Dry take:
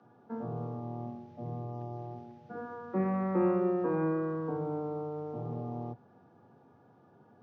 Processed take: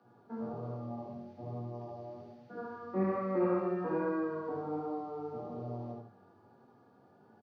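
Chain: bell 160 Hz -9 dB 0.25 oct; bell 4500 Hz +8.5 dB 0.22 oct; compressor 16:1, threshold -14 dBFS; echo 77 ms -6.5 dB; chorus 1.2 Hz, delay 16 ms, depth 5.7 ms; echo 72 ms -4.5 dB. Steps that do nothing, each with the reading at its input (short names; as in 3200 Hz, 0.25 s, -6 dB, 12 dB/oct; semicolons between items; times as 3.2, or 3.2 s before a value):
compressor, threshold -14 dBFS: input peak -18.0 dBFS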